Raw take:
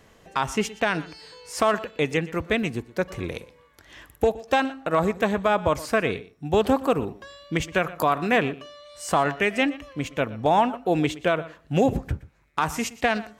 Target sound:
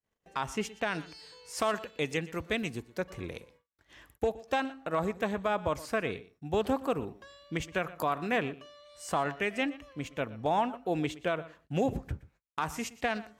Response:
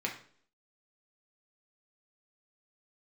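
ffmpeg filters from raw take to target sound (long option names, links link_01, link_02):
-filter_complex "[0:a]agate=range=-35dB:threshold=-51dB:ratio=16:detection=peak,asplit=3[link_01][link_02][link_03];[link_01]afade=type=out:start_time=0.91:duration=0.02[link_04];[link_02]adynamicequalizer=threshold=0.01:dfrequency=2900:dqfactor=0.7:tfrequency=2900:tqfactor=0.7:attack=5:release=100:ratio=0.375:range=3:mode=boostabove:tftype=highshelf,afade=type=in:start_time=0.91:duration=0.02,afade=type=out:start_time=2.99:duration=0.02[link_05];[link_03]afade=type=in:start_time=2.99:duration=0.02[link_06];[link_04][link_05][link_06]amix=inputs=3:normalize=0,volume=-8.5dB"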